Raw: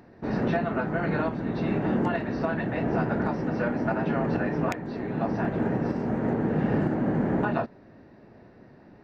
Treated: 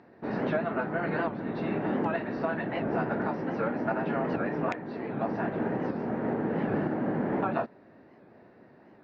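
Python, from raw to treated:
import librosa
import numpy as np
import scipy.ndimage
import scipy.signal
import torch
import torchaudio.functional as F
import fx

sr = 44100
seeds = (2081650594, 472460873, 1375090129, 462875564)

y = fx.highpass(x, sr, hz=300.0, slope=6)
y = fx.air_absorb(y, sr, metres=170.0)
y = fx.record_warp(y, sr, rpm=78.0, depth_cents=160.0)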